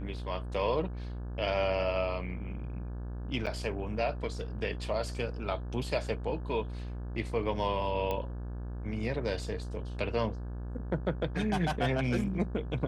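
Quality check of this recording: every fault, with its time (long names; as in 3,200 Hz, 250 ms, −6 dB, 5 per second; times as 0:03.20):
mains buzz 60 Hz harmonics 29 −38 dBFS
0:03.46–0:03.47: drop-out 7.3 ms
0:08.11: click −20 dBFS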